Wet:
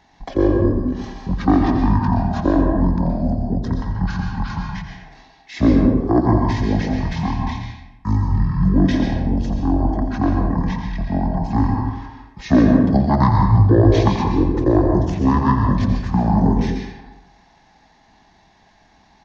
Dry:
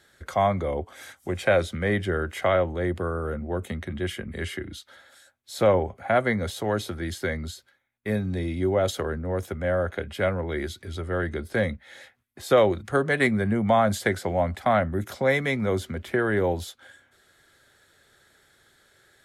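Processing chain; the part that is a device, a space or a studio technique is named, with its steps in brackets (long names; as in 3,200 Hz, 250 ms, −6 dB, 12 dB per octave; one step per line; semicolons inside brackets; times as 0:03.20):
monster voice (pitch shifter −12 semitones; low-shelf EQ 150 Hz +6 dB; single-tap delay 86 ms −10.5 dB; convolution reverb RT60 0.95 s, pre-delay 117 ms, DRR 2 dB)
level +4 dB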